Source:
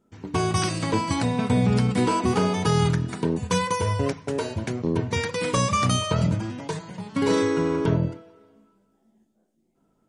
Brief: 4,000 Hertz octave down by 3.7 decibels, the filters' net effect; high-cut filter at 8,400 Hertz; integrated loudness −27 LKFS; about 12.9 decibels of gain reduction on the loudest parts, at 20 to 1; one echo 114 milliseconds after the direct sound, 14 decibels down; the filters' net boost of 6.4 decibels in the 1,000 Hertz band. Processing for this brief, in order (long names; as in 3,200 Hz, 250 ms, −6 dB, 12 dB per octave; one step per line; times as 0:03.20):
low-pass filter 8,400 Hz
parametric band 1,000 Hz +7.5 dB
parametric band 4,000 Hz −5.5 dB
downward compressor 20 to 1, threshold −28 dBFS
single-tap delay 114 ms −14 dB
level +6 dB